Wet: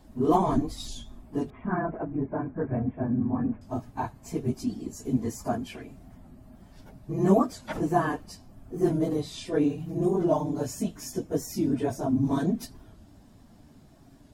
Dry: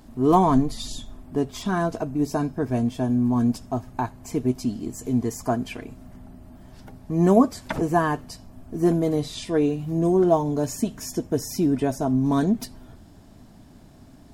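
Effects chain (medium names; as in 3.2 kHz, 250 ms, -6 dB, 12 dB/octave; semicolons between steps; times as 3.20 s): phase randomisation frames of 50 ms; 1.50–3.62 s: steep low-pass 2.2 kHz 48 dB/octave; warped record 45 rpm, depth 100 cents; trim -5 dB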